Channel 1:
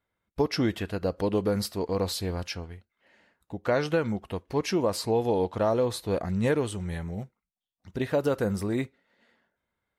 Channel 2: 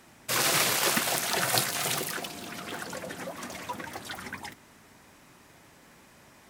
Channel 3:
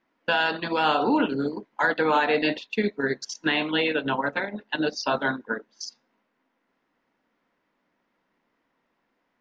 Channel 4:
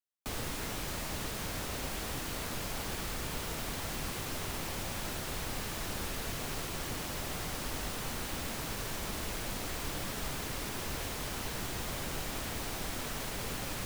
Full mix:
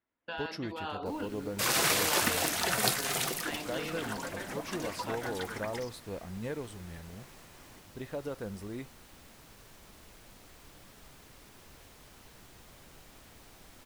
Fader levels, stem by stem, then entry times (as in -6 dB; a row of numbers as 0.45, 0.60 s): -12.5, -2.5, -16.5, -17.0 dB; 0.00, 1.30, 0.00, 0.80 s